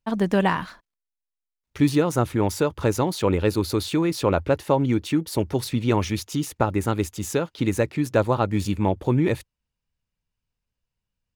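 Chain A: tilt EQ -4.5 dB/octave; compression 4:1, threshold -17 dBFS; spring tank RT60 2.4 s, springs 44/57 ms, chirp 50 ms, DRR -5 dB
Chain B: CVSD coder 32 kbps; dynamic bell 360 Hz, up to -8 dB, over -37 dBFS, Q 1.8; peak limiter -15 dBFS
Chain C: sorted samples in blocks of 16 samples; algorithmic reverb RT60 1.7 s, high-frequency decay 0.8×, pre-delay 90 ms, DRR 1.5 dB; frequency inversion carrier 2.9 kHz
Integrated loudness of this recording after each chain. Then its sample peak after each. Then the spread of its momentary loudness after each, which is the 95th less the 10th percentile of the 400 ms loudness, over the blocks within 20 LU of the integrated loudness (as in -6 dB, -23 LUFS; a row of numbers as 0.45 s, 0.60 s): -16.0 LUFS, -28.0 LUFS, -18.5 LUFS; -1.0 dBFS, -15.0 dBFS, -4.0 dBFS; 10 LU, 5 LU, 6 LU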